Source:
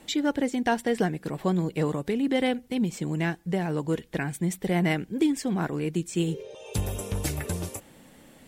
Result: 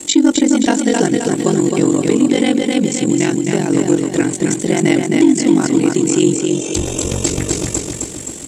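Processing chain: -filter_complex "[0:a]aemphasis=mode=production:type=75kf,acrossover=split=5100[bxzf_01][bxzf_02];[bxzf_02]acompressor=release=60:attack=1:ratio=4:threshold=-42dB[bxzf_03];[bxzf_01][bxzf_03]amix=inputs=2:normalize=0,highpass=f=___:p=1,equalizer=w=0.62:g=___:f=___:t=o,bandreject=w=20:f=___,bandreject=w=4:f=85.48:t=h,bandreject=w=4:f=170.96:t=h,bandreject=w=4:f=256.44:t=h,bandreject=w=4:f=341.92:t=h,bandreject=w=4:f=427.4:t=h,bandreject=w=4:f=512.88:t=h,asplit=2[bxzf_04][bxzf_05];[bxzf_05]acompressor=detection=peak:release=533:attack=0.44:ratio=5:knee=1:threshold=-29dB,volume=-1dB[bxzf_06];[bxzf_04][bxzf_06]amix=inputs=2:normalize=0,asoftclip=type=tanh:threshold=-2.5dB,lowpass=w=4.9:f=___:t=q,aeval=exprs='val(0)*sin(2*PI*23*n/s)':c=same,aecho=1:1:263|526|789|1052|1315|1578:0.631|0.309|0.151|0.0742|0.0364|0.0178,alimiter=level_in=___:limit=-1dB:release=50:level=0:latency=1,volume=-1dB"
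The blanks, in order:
55, 13, 310, 1700, 7400, 8dB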